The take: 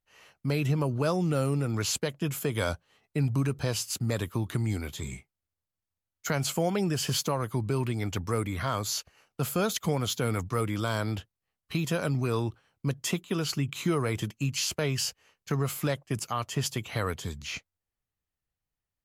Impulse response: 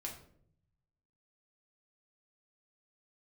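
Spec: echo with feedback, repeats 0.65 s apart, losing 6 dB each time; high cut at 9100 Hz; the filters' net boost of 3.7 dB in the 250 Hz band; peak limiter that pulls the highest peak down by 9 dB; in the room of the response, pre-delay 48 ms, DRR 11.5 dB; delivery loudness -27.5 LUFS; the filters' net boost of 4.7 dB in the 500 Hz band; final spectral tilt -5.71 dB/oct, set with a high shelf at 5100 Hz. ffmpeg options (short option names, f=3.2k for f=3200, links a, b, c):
-filter_complex "[0:a]lowpass=9.1k,equalizer=f=250:t=o:g=4,equalizer=f=500:t=o:g=4.5,highshelf=f=5.1k:g=-8.5,alimiter=limit=-21.5dB:level=0:latency=1,aecho=1:1:650|1300|1950|2600|3250|3900:0.501|0.251|0.125|0.0626|0.0313|0.0157,asplit=2[a][b];[1:a]atrim=start_sample=2205,adelay=48[c];[b][c]afir=irnorm=-1:irlink=0,volume=-10dB[d];[a][d]amix=inputs=2:normalize=0,volume=4dB"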